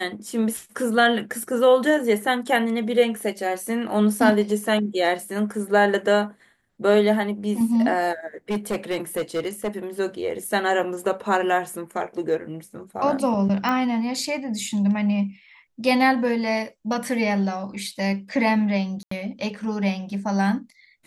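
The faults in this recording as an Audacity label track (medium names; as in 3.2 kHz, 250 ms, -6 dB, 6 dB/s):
8.500000	9.680000	clipped -20 dBFS
13.690000	13.690000	pop -12 dBFS
19.030000	19.110000	dropout 84 ms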